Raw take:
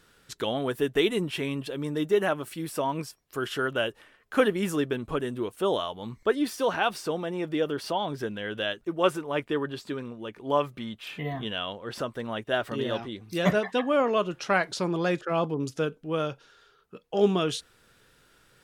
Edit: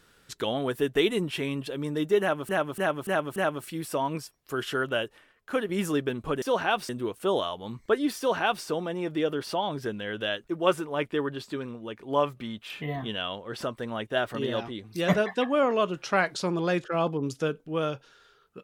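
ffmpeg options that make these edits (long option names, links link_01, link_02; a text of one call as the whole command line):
ffmpeg -i in.wav -filter_complex "[0:a]asplit=8[link_01][link_02][link_03][link_04][link_05][link_06][link_07][link_08];[link_01]atrim=end=2.492[link_09];[link_02]atrim=start=2.198:end=2.492[link_10];[link_03]atrim=start=2.198:end=2.492[link_11];[link_04]atrim=start=2.198:end=2.492[link_12];[link_05]atrim=start=2.198:end=4.53,asetpts=PTS-STARTPTS,afade=type=out:start_time=1.492:duration=0.84:silence=0.421697[link_13];[link_06]atrim=start=4.53:end=5.262,asetpts=PTS-STARTPTS,afade=type=in:duration=0.004:curve=hsin:silence=0.421697[link_14];[link_07]atrim=start=6.548:end=7.022[link_15];[link_08]atrim=start=5.258[link_16];[link_09][link_10]acrossfade=duration=0.004:curve1=hsin:curve2=hsin[link_17];[link_17][link_11]acrossfade=duration=0.004:curve1=hsin:curve2=hsin[link_18];[link_18][link_12]acrossfade=duration=0.004:curve1=hsin:curve2=hsin[link_19];[link_13][link_14]concat=n=2:v=0:a=1[link_20];[link_19][link_20]acrossfade=duration=0.004:curve1=hsin:curve2=hsin[link_21];[link_21][link_15]acrossfade=duration=0.004:curve1=hsin:curve2=hsin[link_22];[link_22][link_16]acrossfade=duration=0.004:curve1=hsin:curve2=hsin" out.wav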